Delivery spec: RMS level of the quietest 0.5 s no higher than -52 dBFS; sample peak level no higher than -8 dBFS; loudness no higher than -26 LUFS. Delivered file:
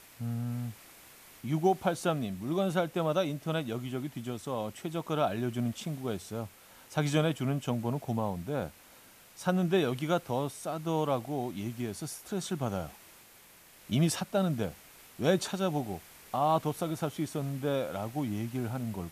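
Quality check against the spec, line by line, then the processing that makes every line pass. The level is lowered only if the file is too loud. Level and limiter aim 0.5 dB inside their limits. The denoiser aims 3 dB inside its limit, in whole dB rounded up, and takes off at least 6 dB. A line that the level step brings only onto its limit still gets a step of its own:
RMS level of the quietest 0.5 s -57 dBFS: pass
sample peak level -14.0 dBFS: pass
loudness -32.5 LUFS: pass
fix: none needed

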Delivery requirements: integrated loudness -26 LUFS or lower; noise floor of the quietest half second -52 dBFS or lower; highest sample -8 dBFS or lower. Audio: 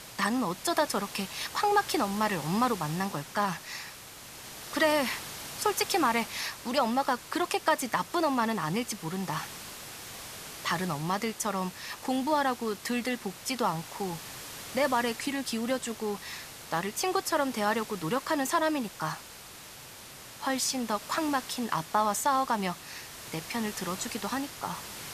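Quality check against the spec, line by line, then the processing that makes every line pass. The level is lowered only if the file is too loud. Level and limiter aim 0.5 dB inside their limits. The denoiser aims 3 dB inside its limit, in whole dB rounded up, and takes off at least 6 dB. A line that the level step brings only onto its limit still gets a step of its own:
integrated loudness -30.5 LUFS: pass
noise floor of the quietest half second -47 dBFS: fail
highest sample -11.5 dBFS: pass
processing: noise reduction 8 dB, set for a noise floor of -47 dBFS

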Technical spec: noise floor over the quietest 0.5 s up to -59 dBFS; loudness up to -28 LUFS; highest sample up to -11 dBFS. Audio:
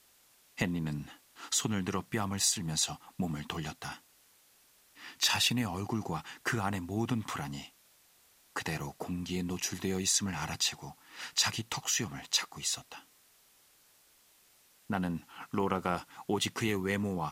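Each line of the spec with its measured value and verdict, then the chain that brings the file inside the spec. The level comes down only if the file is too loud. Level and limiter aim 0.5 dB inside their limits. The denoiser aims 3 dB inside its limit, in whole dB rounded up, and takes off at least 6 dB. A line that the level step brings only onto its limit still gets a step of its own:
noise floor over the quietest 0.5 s -65 dBFS: pass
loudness -33.0 LUFS: pass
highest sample -12.0 dBFS: pass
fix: none needed

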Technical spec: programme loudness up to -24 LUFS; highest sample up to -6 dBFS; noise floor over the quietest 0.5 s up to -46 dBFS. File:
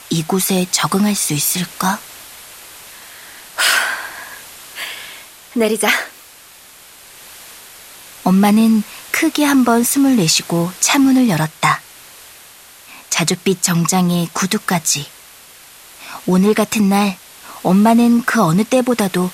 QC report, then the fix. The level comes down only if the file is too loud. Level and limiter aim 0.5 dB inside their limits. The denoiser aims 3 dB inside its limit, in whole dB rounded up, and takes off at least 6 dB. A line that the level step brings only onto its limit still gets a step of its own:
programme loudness -15.0 LUFS: fail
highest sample -1.5 dBFS: fail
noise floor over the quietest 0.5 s -42 dBFS: fail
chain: trim -9.5 dB

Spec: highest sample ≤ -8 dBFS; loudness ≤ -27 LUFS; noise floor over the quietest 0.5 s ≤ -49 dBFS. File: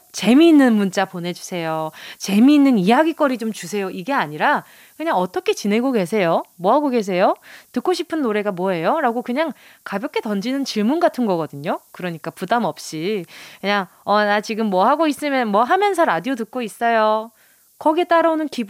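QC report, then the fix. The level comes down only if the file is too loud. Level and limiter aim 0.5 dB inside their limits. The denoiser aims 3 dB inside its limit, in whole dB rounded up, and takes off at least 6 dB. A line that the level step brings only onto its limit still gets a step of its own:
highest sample -4.0 dBFS: fail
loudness -19.0 LUFS: fail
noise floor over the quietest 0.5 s -55 dBFS: pass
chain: trim -8.5 dB

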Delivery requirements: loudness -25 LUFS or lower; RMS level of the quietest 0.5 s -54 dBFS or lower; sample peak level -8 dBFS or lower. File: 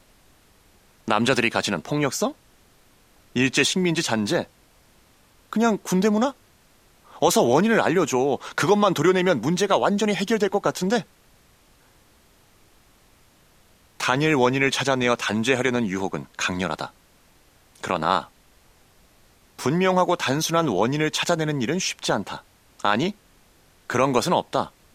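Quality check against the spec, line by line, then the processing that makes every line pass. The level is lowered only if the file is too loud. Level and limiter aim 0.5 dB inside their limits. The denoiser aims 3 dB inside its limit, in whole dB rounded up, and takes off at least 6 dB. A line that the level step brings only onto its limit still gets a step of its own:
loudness -22.5 LUFS: fail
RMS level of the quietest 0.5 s -57 dBFS: pass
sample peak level -5.5 dBFS: fail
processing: trim -3 dB

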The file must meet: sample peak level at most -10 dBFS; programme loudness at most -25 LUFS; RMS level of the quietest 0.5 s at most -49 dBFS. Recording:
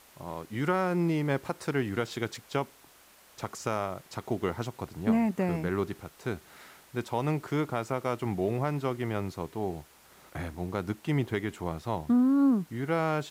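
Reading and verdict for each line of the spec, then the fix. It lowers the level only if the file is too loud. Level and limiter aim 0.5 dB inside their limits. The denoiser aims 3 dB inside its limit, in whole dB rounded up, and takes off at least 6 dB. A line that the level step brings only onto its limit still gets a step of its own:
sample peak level -16.5 dBFS: pass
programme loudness -31.0 LUFS: pass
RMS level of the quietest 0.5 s -58 dBFS: pass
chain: none needed

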